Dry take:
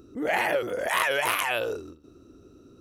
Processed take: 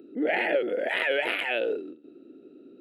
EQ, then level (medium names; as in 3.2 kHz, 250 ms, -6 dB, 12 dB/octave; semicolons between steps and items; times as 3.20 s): high-pass 240 Hz 24 dB/octave; tape spacing loss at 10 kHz 23 dB; static phaser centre 2.6 kHz, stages 4; +6.0 dB